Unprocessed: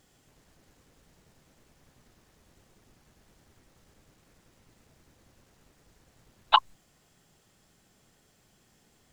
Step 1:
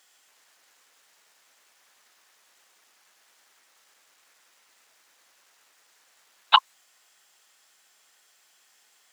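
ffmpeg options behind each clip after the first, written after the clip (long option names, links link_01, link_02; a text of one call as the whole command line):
ffmpeg -i in.wav -af "highpass=1100,volume=6dB" out.wav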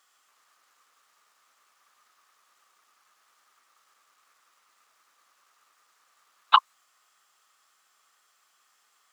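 ffmpeg -i in.wav -af "equalizer=frequency=1200:width_type=o:width=0.37:gain=14.5,volume=-6.5dB" out.wav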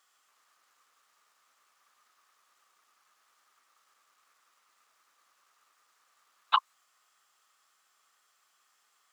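ffmpeg -i in.wav -af "alimiter=limit=-6.5dB:level=0:latency=1:release=114,volume=-3.5dB" out.wav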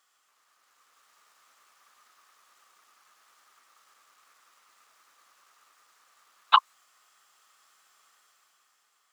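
ffmpeg -i in.wav -af "dynaudnorm=framelen=100:gausssize=17:maxgain=7dB" out.wav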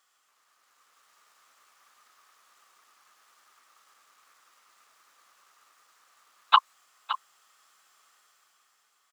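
ffmpeg -i in.wav -af "aecho=1:1:567:0.237" out.wav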